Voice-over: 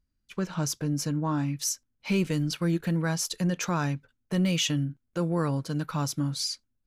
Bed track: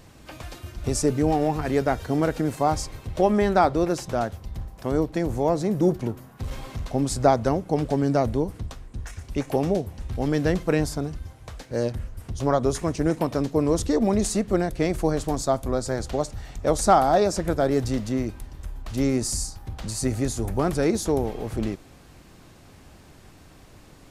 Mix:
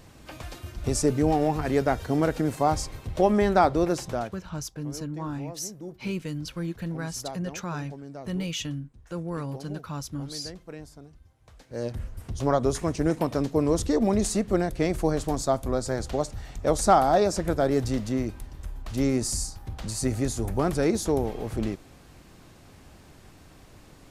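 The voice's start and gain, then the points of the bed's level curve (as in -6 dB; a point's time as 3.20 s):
3.95 s, -5.5 dB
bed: 4.06 s -1 dB
4.67 s -19 dB
11.31 s -19 dB
12.02 s -1.5 dB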